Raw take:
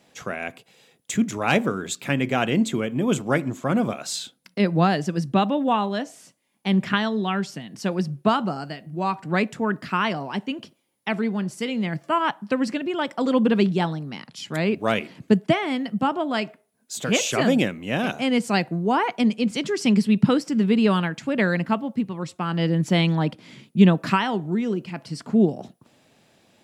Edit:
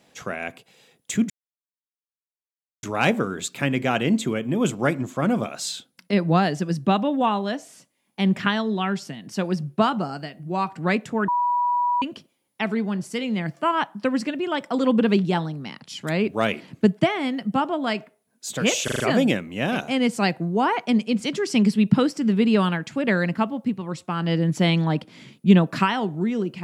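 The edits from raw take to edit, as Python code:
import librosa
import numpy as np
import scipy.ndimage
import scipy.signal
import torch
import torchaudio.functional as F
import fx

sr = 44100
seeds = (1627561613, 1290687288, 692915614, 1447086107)

y = fx.edit(x, sr, fx.insert_silence(at_s=1.3, length_s=1.53),
    fx.bleep(start_s=9.75, length_s=0.74, hz=974.0, db=-18.5),
    fx.stutter(start_s=17.31, slice_s=0.04, count=5), tone=tone)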